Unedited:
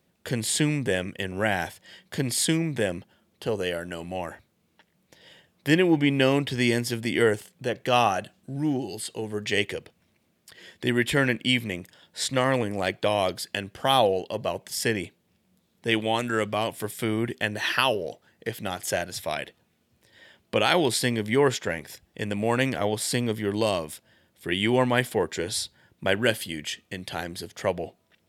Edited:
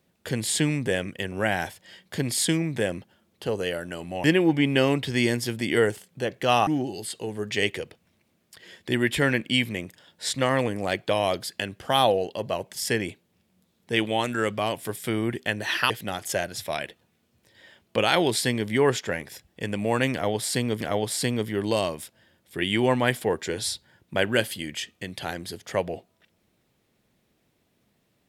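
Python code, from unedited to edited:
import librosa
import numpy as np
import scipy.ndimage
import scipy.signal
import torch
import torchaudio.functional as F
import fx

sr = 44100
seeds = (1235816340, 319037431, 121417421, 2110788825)

y = fx.edit(x, sr, fx.cut(start_s=4.24, length_s=1.44),
    fx.cut(start_s=8.11, length_s=0.51),
    fx.cut(start_s=17.85, length_s=0.63),
    fx.repeat(start_s=22.71, length_s=0.68, count=2), tone=tone)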